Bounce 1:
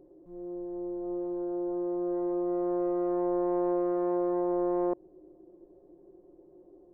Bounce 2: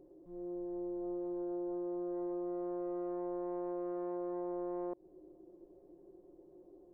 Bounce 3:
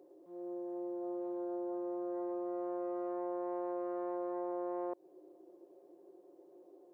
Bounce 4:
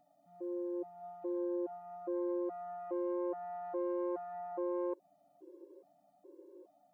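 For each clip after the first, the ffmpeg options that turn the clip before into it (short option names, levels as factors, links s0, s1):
-af "acompressor=threshold=0.0224:ratio=6,volume=0.708"
-af "highpass=450,volume=1.68"
-af "afftfilt=real='re*gt(sin(2*PI*1.2*pts/sr)*(1-2*mod(floor(b*sr/1024/290),2)),0)':imag='im*gt(sin(2*PI*1.2*pts/sr)*(1-2*mod(floor(b*sr/1024/290),2)),0)':win_size=1024:overlap=0.75,volume=1.5"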